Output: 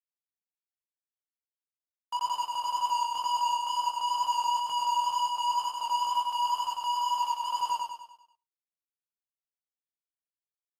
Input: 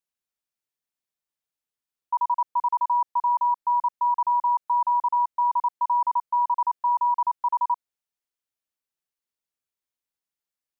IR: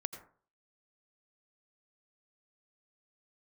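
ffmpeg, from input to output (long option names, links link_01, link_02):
-filter_complex "[0:a]asplit=3[link_01][link_02][link_03];[link_01]afade=type=out:start_time=6.14:duration=0.02[link_04];[link_02]highpass=790,afade=type=in:start_time=6.14:duration=0.02,afade=type=out:start_time=7.43:duration=0.02[link_05];[link_03]afade=type=in:start_time=7.43:duration=0.02[link_06];[link_04][link_05][link_06]amix=inputs=3:normalize=0,asplit=2[link_07][link_08];[link_08]alimiter=level_in=2.5dB:limit=-24dB:level=0:latency=1:release=59,volume=-2.5dB,volume=-2dB[link_09];[link_07][link_09]amix=inputs=2:normalize=0,acrusher=bits=6:mix=0:aa=0.000001,asoftclip=type=hard:threshold=-28dB,flanger=delay=17.5:depth=5.2:speed=2.1,aecho=1:1:98|196|294|392|490|588:0.708|0.333|0.156|0.0735|0.0345|0.0162,asplit=2[link_10][link_11];[1:a]atrim=start_sample=2205,afade=type=out:start_time=0.16:duration=0.01,atrim=end_sample=7497[link_12];[link_11][link_12]afir=irnorm=-1:irlink=0,volume=-10.5dB[link_13];[link_10][link_13]amix=inputs=2:normalize=0" -ar 32000 -c:a aac -b:a 48k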